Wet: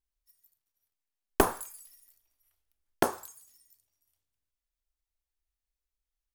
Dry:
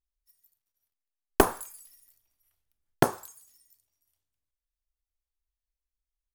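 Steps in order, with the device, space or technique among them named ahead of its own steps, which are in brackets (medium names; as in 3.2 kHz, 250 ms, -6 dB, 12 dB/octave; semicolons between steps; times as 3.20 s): parallel distortion (in parallel at -4 dB: hard clipper -22.5 dBFS, distortion -2 dB); 1.69–3.16 s: on the sum: peaking EQ 140 Hz -13.5 dB 0.66 oct; trim -4.5 dB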